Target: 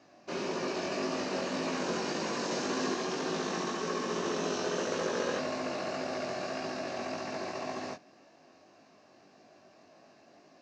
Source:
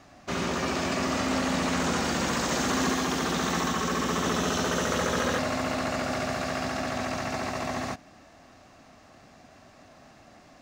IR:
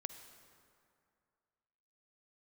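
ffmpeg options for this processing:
-af "acrusher=bits=4:mode=log:mix=0:aa=0.000001,flanger=delay=18.5:depth=3.2:speed=1.8,highpass=230,equalizer=f=250:t=q:w=4:g=-4,equalizer=f=370:t=q:w=4:g=4,equalizer=f=800:t=q:w=4:g=-4,equalizer=f=1.3k:t=q:w=4:g=-8,equalizer=f=2k:t=q:w=4:g=-7,equalizer=f=3.4k:t=q:w=4:g=-8,lowpass=f=5.8k:w=0.5412,lowpass=f=5.8k:w=1.3066"

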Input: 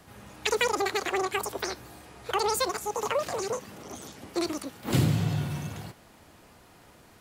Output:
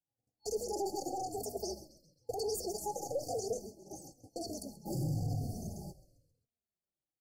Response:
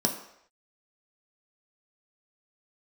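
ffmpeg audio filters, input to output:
-filter_complex "[0:a]aeval=exprs='0.335*(cos(1*acos(clip(val(0)/0.335,-1,1)))-cos(1*PI/2))+0.00668*(cos(7*acos(clip(val(0)/0.335,-1,1)))-cos(7*PI/2))+0.00596*(cos(8*acos(clip(val(0)/0.335,-1,1)))-cos(8*PI/2))':c=same,agate=range=-41dB:threshold=-43dB:ratio=16:detection=peak,afftfilt=real='re*(1-between(b*sr/4096,840,4400))':imag='im*(1-between(b*sr/4096,840,4400))':win_size=4096:overlap=0.75,asplit=5[a][b][c][d][e];[b]adelay=133,afreqshift=-65,volume=-17dB[f];[c]adelay=266,afreqshift=-130,volume=-23.4dB[g];[d]adelay=399,afreqshift=-195,volume=-29.8dB[h];[e]adelay=532,afreqshift=-260,volume=-36.1dB[i];[a][f][g][h][i]amix=inputs=5:normalize=0,alimiter=level_in=1.5dB:limit=-24dB:level=0:latency=1:release=24,volume=-1.5dB,asplit=2[j][k];[k]adelay=3.2,afreqshift=-0.99[l];[j][l]amix=inputs=2:normalize=1"

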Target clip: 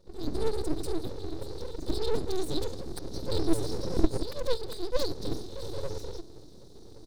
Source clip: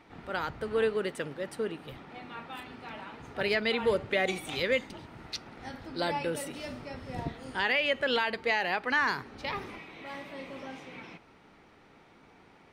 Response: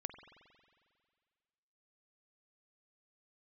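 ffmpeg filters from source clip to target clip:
-filter_complex "[0:a]acrossover=split=2800[a][b];[b]acompressor=threshold=-51dB:ratio=4:attack=1:release=60[c];[a][c]amix=inputs=2:normalize=0,equalizer=f=160:t=o:w=0.33:g=7,equalizer=f=630:t=o:w=0.33:g=10,equalizer=f=3.15k:t=o:w=0.33:g=-5,asplit=2[d][e];[e]adelay=319,lowpass=f=1.8k:p=1,volume=-14.5dB,asplit=2[f][g];[g]adelay=319,lowpass=f=1.8k:p=1,volume=0.24,asplit=2[h][i];[i]adelay=319,lowpass=f=1.8k:p=1,volume=0.24[j];[f][h][j]amix=inputs=3:normalize=0[k];[d][k]amix=inputs=2:normalize=0,dynaudnorm=f=110:g=7:m=13dB,flanger=delay=3.3:depth=4.2:regen=36:speed=1:shape=triangular,asoftclip=type=hard:threshold=-8.5dB,afftfilt=real='re*(1-between(b*sr/4096,300,3700))':imag='im*(1-between(b*sr/4096,300,3700))':win_size=4096:overlap=0.75,atempo=1.8,aeval=exprs='abs(val(0))':c=same,volume=6dB"

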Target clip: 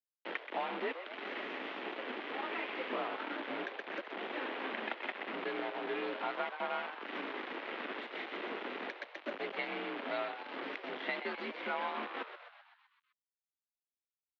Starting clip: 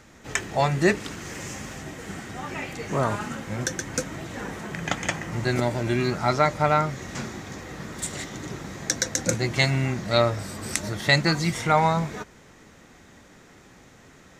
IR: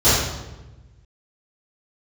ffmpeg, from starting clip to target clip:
-filter_complex "[0:a]asplit=3[a][b][c];[a]afade=t=out:st=7.28:d=0.02[d];[b]bandreject=f=50:t=h:w=6,bandreject=f=100:t=h:w=6,bandreject=f=150:t=h:w=6,bandreject=f=200:t=h:w=6,bandreject=f=250:t=h:w=6,bandreject=f=300:t=h:w=6,bandreject=f=350:t=h:w=6,afade=t=in:st=7.28:d=0.02,afade=t=out:st=8.68:d=0.02[e];[c]afade=t=in:st=8.68:d=0.02[f];[d][e][f]amix=inputs=3:normalize=0,acompressor=threshold=-34dB:ratio=5,acrusher=bits=5:mix=0:aa=0.000001,highpass=f=220:t=q:w=0.5412,highpass=f=220:t=q:w=1.307,lowpass=f=3.2k:t=q:w=0.5176,lowpass=f=3.2k:t=q:w=0.7071,lowpass=f=3.2k:t=q:w=1.932,afreqshift=56,asplit=8[g][h][i][j][k][l][m][n];[h]adelay=128,afreqshift=110,volume=-10dB[o];[i]adelay=256,afreqshift=220,volume=-14.9dB[p];[j]adelay=384,afreqshift=330,volume=-19.8dB[q];[k]adelay=512,afreqshift=440,volume=-24.6dB[r];[l]adelay=640,afreqshift=550,volume=-29.5dB[s];[m]adelay=768,afreqshift=660,volume=-34.4dB[t];[n]adelay=896,afreqshift=770,volume=-39.3dB[u];[g][o][p][q][r][s][t][u]amix=inputs=8:normalize=0,volume=-1.5dB"

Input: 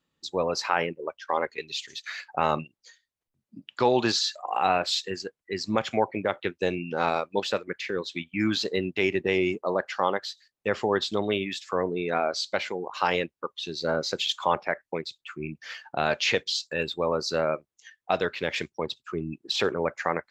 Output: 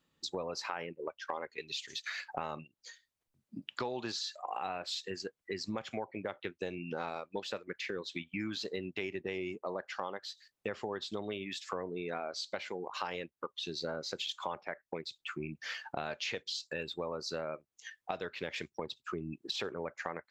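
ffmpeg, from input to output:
-af "acompressor=threshold=-38dB:ratio=5,volume=1.5dB"

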